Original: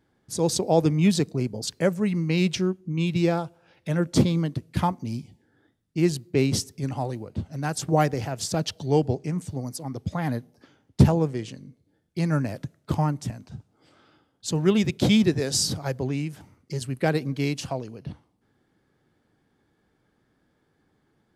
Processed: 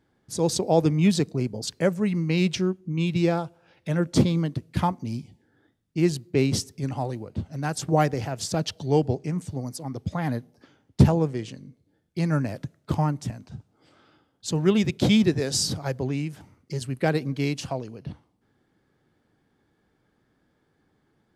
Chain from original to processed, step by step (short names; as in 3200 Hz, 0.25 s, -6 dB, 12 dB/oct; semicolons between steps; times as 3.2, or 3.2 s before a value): high shelf 10000 Hz -4.5 dB